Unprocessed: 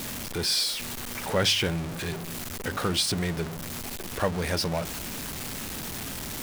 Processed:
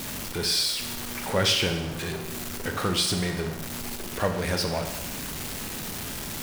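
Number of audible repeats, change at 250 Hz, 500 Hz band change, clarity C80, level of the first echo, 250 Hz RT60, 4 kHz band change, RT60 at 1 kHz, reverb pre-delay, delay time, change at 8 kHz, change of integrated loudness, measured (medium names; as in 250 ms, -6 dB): no echo, +1.0 dB, +1.0 dB, 9.5 dB, no echo, 0.95 s, +1.0 dB, 0.95 s, 20 ms, no echo, +1.0 dB, +1.0 dB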